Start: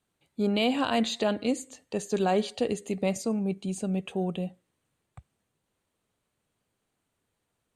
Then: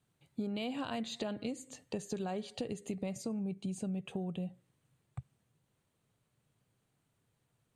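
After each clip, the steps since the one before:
parametric band 130 Hz +12.5 dB 0.79 octaves
downward compressor 12 to 1, threshold −33 dBFS, peak gain reduction 14.5 dB
level −1.5 dB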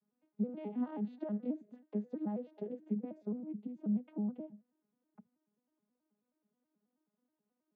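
vocoder with an arpeggio as carrier minor triad, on G#3, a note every 107 ms
low-pass filter 1,400 Hz 12 dB per octave
level +1 dB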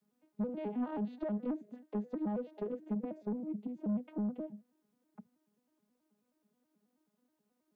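dynamic equaliser 230 Hz, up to −3 dB, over −48 dBFS, Q 1.7
soft clipping −35 dBFS, distortion −13 dB
level +6 dB

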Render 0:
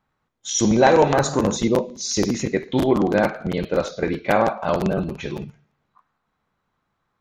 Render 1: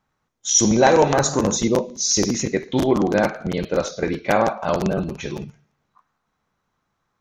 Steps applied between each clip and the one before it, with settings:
parametric band 6,000 Hz +8 dB 0.53 octaves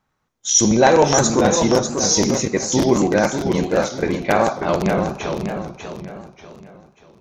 feedback echo with a swinging delay time 590 ms, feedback 37%, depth 132 cents, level −6.5 dB
level +1.5 dB

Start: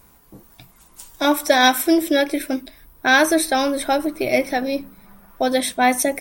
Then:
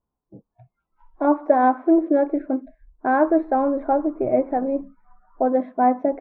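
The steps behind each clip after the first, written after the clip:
noise reduction from a noise print of the clip's start 27 dB
low-pass filter 1,100 Hz 24 dB per octave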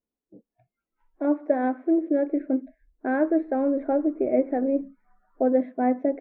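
graphic EQ with 10 bands 125 Hz −6 dB, 250 Hz +8 dB, 500 Hz +6 dB, 1,000 Hz −11 dB, 2,000 Hz +8 dB
speech leveller 0.5 s
low-shelf EQ 190 Hz −6 dB
level −6.5 dB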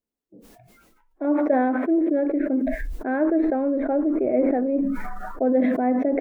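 level that may fall only so fast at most 22 dB per second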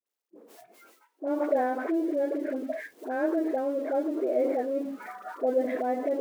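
mu-law and A-law mismatch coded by mu
four-pole ladder high-pass 300 Hz, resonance 25%
all-pass dispersion highs, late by 62 ms, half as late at 820 Hz

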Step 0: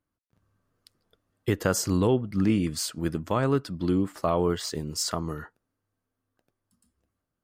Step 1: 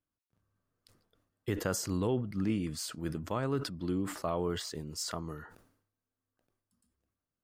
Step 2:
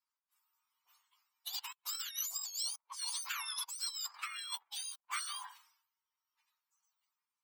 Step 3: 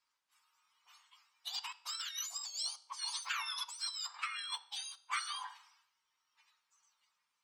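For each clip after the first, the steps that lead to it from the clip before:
level that may fall only so fast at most 84 dB per second; level −8.5 dB
frequency axis turned over on the octave scale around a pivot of 1,200 Hz; compressor whose output falls as the input rises −41 dBFS, ratio −0.5; elliptic high-pass filter 940 Hz, stop band 70 dB; level +1 dB
high-frequency loss of the air 73 metres; convolution reverb RT60 0.60 s, pre-delay 3 ms, DRR 12 dB; one half of a high-frequency compander encoder only; level +3.5 dB

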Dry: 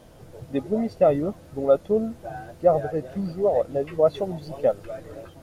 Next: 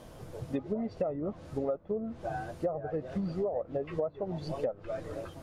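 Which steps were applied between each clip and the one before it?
parametric band 1,100 Hz +4 dB 0.3 octaves
treble cut that deepens with the level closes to 1,400 Hz, closed at −18 dBFS
downward compressor 12 to 1, threshold −29 dBFS, peak gain reduction 17.5 dB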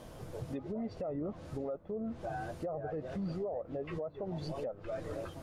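brickwall limiter −30.5 dBFS, peak gain reduction 10.5 dB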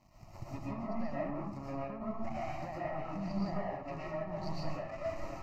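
power curve on the samples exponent 2
phaser with its sweep stopped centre 2,300 Hz, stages 8
comb and all-pass reverb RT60 0.77 s, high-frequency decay 0.65×, pre-delay 80 ms, DRR −6 dB
level +1.5 dB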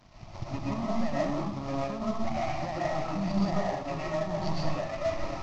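variable-slope delta modulation 32 kbit/s
level +8 dB

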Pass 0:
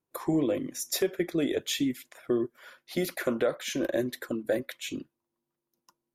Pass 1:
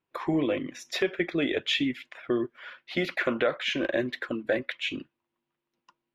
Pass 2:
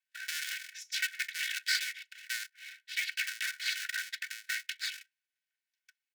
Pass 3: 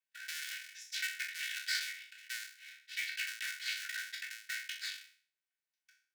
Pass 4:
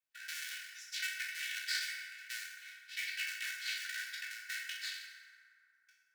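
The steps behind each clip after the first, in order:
drawn EQ curve 470 Hz 0 dB, 2,800 Hz +10 dB, 8,900 Hz −18 dB, 13,000 Hz −23 dB
sub-harmonics by changed cycles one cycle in 2, inverted; Chebyshev high-pass with heavy ripple 1,500 Hz, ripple 3 dB; comb filter 2.7 ms, depth 74%; level −2 dB
peak hold with a decay on every bin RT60 0.46 s; level −6.5 dB
feedback delay network reverb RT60 2.7 s, high-frequency decay 0.4×, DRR 1.5 dB; level −2 dB

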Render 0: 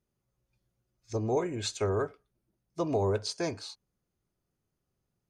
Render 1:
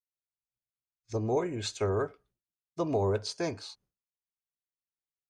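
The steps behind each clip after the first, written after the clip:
downward expander −59 dBFS
high-shelf EQ 7,100 Hz −5.5 dB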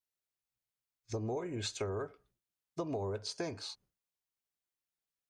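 downward compressor, threshold −36 dBFS, peak gain reduction 12 dB
level +1.5 dB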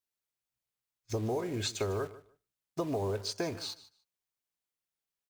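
in parallel at −4.5 dB: bit-depth reduction 8 bits, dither none
on the sum: repeating echo 150 ms, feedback 16%, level −17.5 dB

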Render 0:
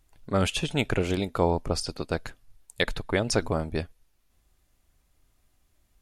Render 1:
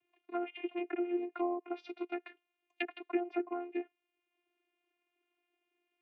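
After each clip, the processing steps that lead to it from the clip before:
channel vocoder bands 16, saw 351 Hz
low-pass with resonance 2,600 Hz, resonance Q 8
treble cut that deepens with the level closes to 930 Hz, closed at −22 dBFS
level −8.5 dB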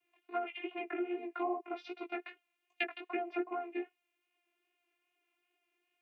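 low-shelf EQ 410 Hz −9 dB
chorus effect 2.5 Hz, delay 15.5 ms, depth 3.9 ms
level +6.5 dB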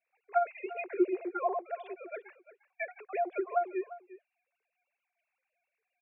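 three sine waves on the formant tracks
single-tap delay 348 ms −16.5 dB
level +5 dB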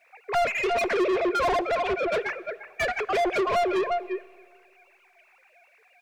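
mid-hump overdrive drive 36 dB, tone 2,500 Hz, clips at −15.5 dBFS
on a send at −20 dB: convolution reverb RT60 2.0 s, pre-delay 5 ms
on the sum: level −1 dB

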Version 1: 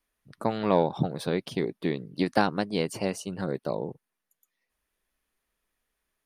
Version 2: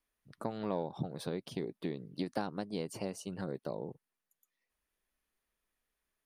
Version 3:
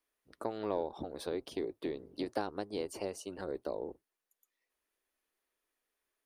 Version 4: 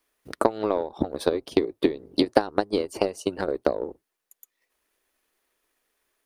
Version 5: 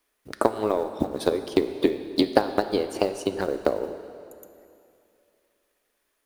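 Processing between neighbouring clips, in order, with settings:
dynamic equaliser 2,200 Hz, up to −6 dB, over −42 dBFS, Q 0.77; downward compressor 2 to 1, threshold −30 dBFS, peak gain reduction 7.5 dB; level −5.5 dB
sub-octave generator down 1 octave, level −3 dB; low shelf with overshoot 230 Hz −12 dB, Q 1.5
in parallel at +2.5 dB: downward compressor, threshold −43 dBFS, peak gain reduction 14 dB; on the sum: transient designer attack +12 dB, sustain −4 dB; level +3.5 dB
one scale factor per block 7 bits; dense smooth reverb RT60 2.6 s, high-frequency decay 0.9×, DRR 9.5 dB

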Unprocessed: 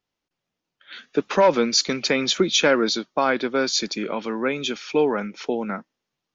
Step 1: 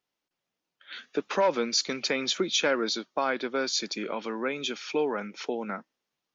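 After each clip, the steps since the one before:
low-shelf EQ 150 Hz −11.5 dB
in parallel at +1.5 dB: downward compressor, threshold −30 dBFS, peak gain reduction 16 dB
on the sum: level −8.5 dB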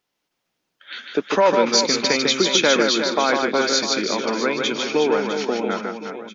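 reverse bouncing-ball delay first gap 150 ms, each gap 1.4×, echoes 5
level +7.5 dB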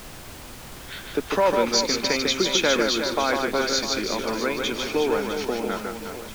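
background noise pink −36 dBFS
level −4 dB

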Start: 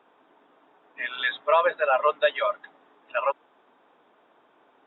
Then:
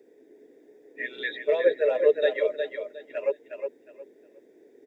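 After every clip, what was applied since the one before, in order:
drawn EQ curve 180 Hz 0 dB, 430 Hz +14 dB, 700 Hz −10 dB, 1,200 Hz −30 dB, 1,900 Hz +1 dB, 3,100 Hz −17 dB, 4,600 Hz +11 dB
on a send: repeating echo 361 ms, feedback 23%, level −6.5 dB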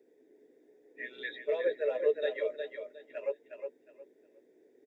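double-tracking delay 16 ms −11 dB
level −8.5 dB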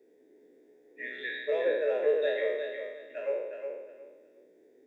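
peak hold with a decay on every bin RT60 1.04 s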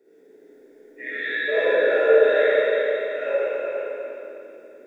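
parametric band 1,400 Hz +13 dB 0.21 octaves
four-comb reverb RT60 2.7 s, DRR −9 dB
level +1 dB

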